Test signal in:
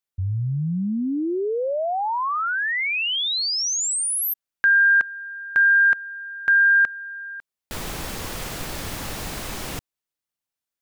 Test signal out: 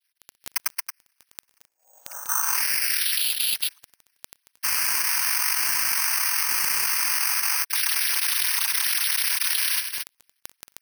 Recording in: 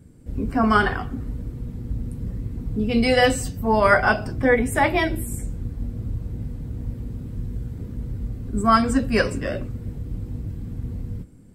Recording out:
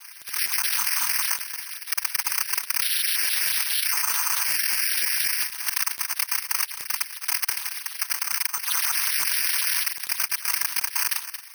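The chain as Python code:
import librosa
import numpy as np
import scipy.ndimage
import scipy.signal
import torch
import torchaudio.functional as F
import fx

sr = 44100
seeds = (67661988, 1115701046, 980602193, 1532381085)

p1 = fx.sine_speech(x, sr)
p2 = scipy.signal.sosfilt(scipy.signal.cheby1(8, 1.0, 1500.0, 'highpass', fs=sr, output='sos'), p1)
p3 = p2 + 0.85 * np.pad(p2, (int(4.2 * sr / 1000.0), 0))[:len(p2)]
p4 = fx.rider(p3, sr, range_db=3, speed_s=0.5)
p5 = p3 + F.gain(torch.from_numpy(p4), -0.5).numpy()
p6 = 10.0 ** (-15.5 / 20.0) * np.tanh(p5 / 10.0 ** (-15.5 / 20.0))
p7 = fx.noise_vocoder(p6, sr, seeds[0], bands=8)
p8 = fx.dmg_crackle(p7, sr, seeds[1], per_s=12.0, level_db=-52.0)
p9 = p8 + fx.echo_single(p8, sr, ms=226, db=-15.5, dry=0)
p10 = (np.kron(p9[::6], np.eye(6)[0]) * 6)[:len(p9)]
p11 = fx.env_flatten(p10, sr, amount_pct=100)
y = F.gain(torch.from_numpy(p11), -15.0).numpy()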